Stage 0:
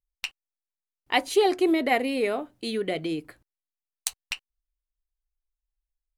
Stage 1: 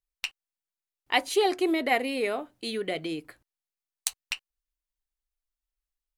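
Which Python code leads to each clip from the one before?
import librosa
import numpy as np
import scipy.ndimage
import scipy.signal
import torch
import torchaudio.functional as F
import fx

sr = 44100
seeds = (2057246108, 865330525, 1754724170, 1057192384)

y = fx.low_shelf(x, sr, hz=490.0, db=-5.5)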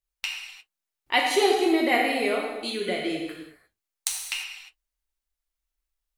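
y = fx.rev_gated(x, sr, seeds[0], gate_ms=380, shape='falling', drr_db=-2.0)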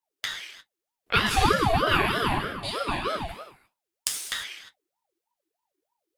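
y = fx.ring_lfo(x, sr, carrier_hz=650.0, swing_pct=50, hz=3.2)
y = y * librosa.db_to_amplitude(2.5)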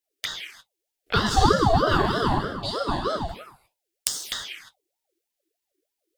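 y = fx.env_phaser(x, sr, low_hz=160.0, high_hz=2400.0, full_db=-29.0)
y = y * librosa.db_to_amplitude(4.5)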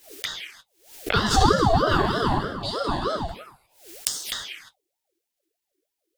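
y = fx.pre_swell(x, sr, db_per_s=120.0)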